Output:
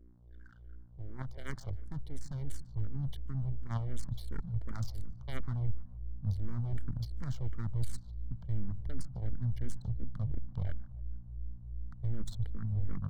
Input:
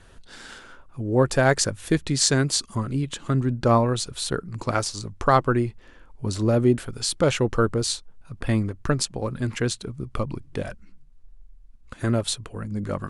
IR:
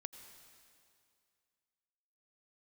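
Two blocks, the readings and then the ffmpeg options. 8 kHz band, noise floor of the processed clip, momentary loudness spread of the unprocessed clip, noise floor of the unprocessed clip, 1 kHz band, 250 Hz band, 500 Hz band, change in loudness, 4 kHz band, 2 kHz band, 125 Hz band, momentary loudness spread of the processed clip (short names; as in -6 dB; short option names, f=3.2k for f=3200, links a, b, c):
-29.0 dB, -52 dBFS, 13 LU, -50 dBFS, -27.0 dB, -20.0 dB, -30.0 dB, -15.5 dB, -27.5 dB, -24.5 dB, -9.0 dB, 10 LU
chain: -filter_complex "[0:a]deesser=0.6,highpass=f=89:w=0.5412,highpass=f=89:w=1.3066,anlmdn=6.31,aeval=exprs='0.596*(cos(1*acos(clip(val(0)/0.596,-1,1)))-cos(1*PI/2))+0.266*(cos(3*acos(clip(val(0)/0.596,-1,1)))-cos(3*PI/2))+0.0075*(cos(4*acos(clip(val(0)/0.596,-1,1)))-cos(4*PI/2))+0.106*(cos(5*acos(clip(val(0)/0.596,-1,1)))-cos(5*PI/2))':c=same,lowshelf=f=430:g=7.5,areverse,acompressor=threshold=-39dB:ratio=5,areverse,aeval=exprs='val(0)+0.00282*(sin(2*PI*60*n/s)+sin(2*PI*2*60*n/s)/2+sin(2*PI*3*60*n/s)/3+sin(2*PI*4*60*n/s)/4+sin(2*PI*5*60*n/s)/5)':c=same,aeval=exprs='max(val(0),0)':c=same,asubboost=boost=9.5:cutoff=120,asuperstop=centerf=2600:order=12:qfactor=5.5,asplit=2[a][b];[b]adelay=148,lowpass=f=2.2k:p=1,volume=-18dB,asplit=2[c][d];[d]adelay=148,lowpass=f=2.2k:p=1,volume=0.54,asplit=2[e][f];[f]adelay=148,lowpass=f=2.2k:p=1,volume=0.54,asplit=2[g][h];[h]adelay=148,lowpass=f=2.2k:p=1,volume=0.54,asplit=2[i][j];[j]adelay=148,lowpass=f=2.2k:p=1,volume=0.54[k];[a][c][e][g][i][k]amix=inputs=6:normalize=0,asplit=2[l][m];[m]afreqshift=-2.8[n];[l][n]amix=inputs=2:normalize=1,volume=1dB"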